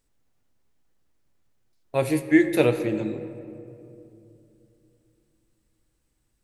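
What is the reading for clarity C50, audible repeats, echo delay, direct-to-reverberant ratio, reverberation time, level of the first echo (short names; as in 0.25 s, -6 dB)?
11.0 dB, none, none, 9.0 dB, 2.8 s, none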